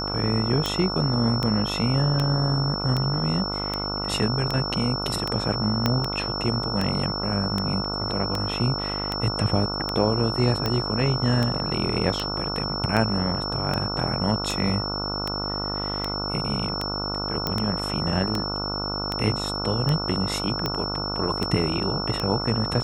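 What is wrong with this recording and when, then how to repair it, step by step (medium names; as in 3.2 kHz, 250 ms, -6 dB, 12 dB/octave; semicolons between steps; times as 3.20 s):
buzz 50 Hz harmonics 29 -31 dBFS
tick 78 rpm
whine 5.4 kHz -29 dBFS
5.86 s: pop -7 dBFS
17.47 s: pop -10 dBFS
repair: de-click; de-hum 50 Hz, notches 29; band-stop 5.4 kHz, Q 30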